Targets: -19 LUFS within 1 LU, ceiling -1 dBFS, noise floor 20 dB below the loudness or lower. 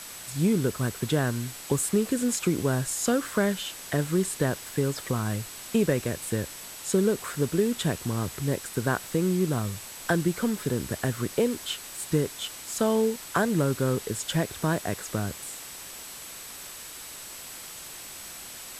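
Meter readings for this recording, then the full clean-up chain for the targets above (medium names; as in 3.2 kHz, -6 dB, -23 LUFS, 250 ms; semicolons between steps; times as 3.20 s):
steady tone 7.9 kHz; tone level -47 dBFS; noise floor -42 dBFS; noise floor target -48 dBFS; loudness -28.0 LUFS; peak level -11.5 dBFS; loudness target -19.0 LUFS
-> band-stop 7.9 kHz, Q 30; noise reduction 6 dB, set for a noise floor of -42 dBFS; trim +9 dB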